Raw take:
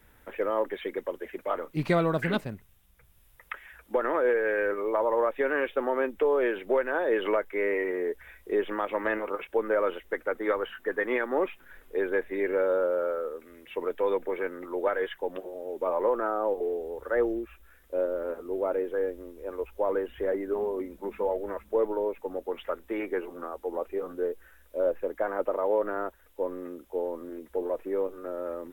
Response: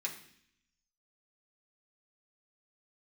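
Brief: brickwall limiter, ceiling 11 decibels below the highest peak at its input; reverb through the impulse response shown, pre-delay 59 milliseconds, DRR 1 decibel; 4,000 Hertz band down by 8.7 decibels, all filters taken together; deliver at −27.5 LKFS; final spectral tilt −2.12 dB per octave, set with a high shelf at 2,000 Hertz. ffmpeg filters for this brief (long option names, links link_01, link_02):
-filter_complex "[0:a]highshelf=frequency=2000:gain=-6,equalizer=frequency=4000:width_type=o:gain=-6.5,alimiter=level_in=1dB:limit=-24dB:level=0:latency=1,volume=-1dB,asplit=2[link_01][link_02];[1:a]atrim=start_sample=2205,adelay=59[link_03];[link_02][link_03]afir=irnorm=-1:irlink=0,volume=-2.5dB[link_04];[link_01][link_04]amix=inputs=2:normalize=0,volume=6dB"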